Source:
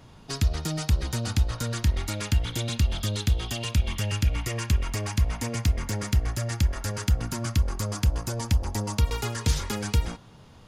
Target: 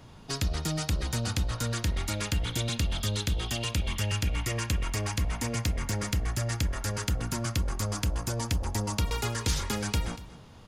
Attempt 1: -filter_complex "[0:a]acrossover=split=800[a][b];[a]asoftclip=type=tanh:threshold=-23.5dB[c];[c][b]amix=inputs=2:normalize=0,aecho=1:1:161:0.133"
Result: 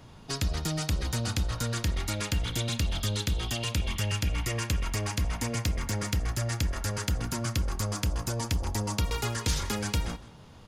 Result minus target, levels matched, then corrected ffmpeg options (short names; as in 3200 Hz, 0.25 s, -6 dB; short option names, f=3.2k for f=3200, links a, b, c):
echo 77 ms early
-filter_complex "[0:a]acrossover=split=800[a][b];[a]asoftclip=type=tanh:threshold=-23.5dB[c];[c][b]amix=inputs=2:normalize=0,aecho=1:1:238:0.133"